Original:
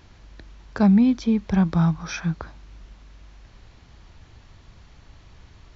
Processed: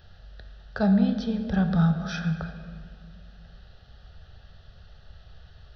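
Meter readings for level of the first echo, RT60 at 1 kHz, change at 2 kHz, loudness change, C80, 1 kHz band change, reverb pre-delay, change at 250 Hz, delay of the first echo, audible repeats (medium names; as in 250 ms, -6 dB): no echo, 1.9 s, -0.5 dB, -4.0 dB, 9.5 dB, -3.0 dB, 5 ms, -4.5 dB, no echo, no echo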